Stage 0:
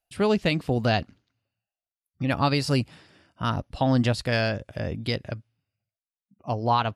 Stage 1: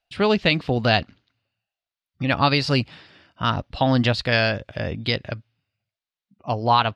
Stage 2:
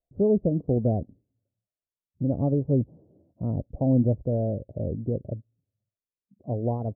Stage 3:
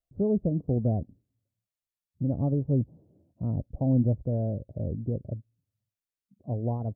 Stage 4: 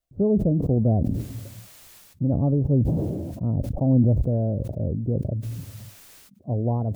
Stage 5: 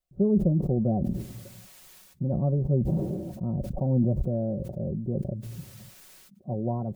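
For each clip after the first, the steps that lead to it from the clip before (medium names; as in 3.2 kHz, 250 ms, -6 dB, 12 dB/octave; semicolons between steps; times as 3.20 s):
FFT filter 330 Hz 0 dB, 4 kHz +7 dB, 9.9 kHz -13 dB; trim +2 dB
steep low-pass 570 Hz 36 dB/octave; trim -1 dB
peaking EQ 480 Hz -6 dB 1.8 oct
decay stretcher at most 29 dB/s; trim +4.5 dB
comb 5.4 ms; trim -4.5 dB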